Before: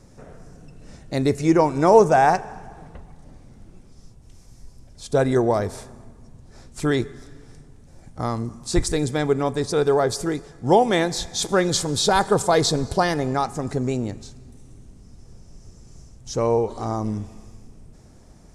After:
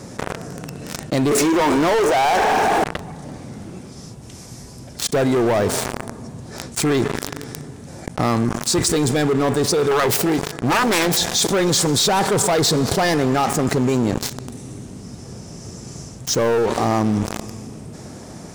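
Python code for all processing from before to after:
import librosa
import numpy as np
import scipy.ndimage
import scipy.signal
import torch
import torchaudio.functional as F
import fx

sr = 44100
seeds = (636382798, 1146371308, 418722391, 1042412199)

y = fx.chain(x, sr, fx.highpass(hz=260.0, slope=24),
    fx.env_flatten(amount_pct=70), at=(1.31, 2.84))
y = fx.chain(y, sr, fx.self_delay(depth_ms=0.97),
    fx.hum_notches(base_hz=50, count=3), at=(9.91, 11.17))
y = scipy.signal.sosfilt(scipy.signal.butter(2, 130.0, 'highpass', fs=sr, output='sos'), y)
y = fx.leveller(y, sr, passes=5)
y = fx.env_flatten(y, sr, amount_pct=70)
y = y * librosa.db_to_amplitude(-13.5)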